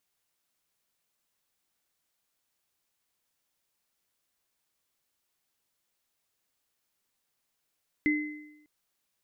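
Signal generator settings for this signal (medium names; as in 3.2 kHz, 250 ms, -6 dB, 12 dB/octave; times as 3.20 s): sine partials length 0.60 s, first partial 301 Hz, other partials 2.05 kHz, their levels -3 dB, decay 0.92 s, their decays 0.82 s, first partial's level -22 dB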